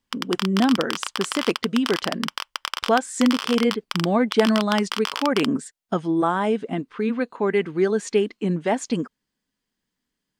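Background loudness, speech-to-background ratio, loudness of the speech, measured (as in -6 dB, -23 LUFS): -29.5 LUFS, 6.0 dB, -23.5 LUFS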